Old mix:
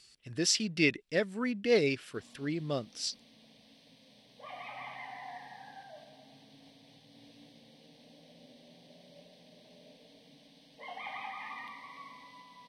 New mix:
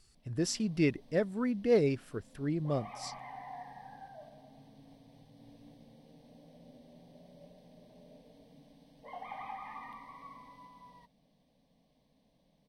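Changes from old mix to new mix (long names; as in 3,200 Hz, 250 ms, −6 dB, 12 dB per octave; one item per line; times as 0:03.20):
background: entry −1.75 s
master: remove meter weighting curve D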